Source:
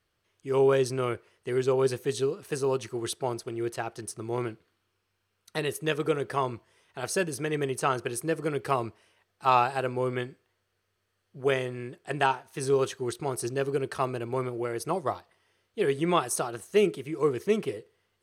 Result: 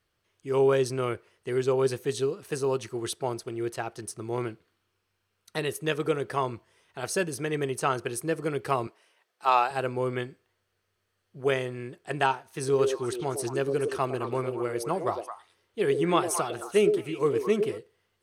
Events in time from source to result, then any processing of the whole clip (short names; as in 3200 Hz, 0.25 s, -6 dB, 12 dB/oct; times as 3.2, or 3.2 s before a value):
8.87–9.71 HPF 380 Hz
12.49–17.78 delay with a stepping band-pass 0.108 s, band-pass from 430 Hz, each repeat 1.4 oct, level -3 dB